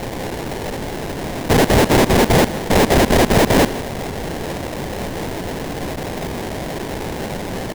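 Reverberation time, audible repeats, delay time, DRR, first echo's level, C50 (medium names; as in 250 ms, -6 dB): no reverb, 1, 159 ms, no reverb, -16.0 dB, no reverb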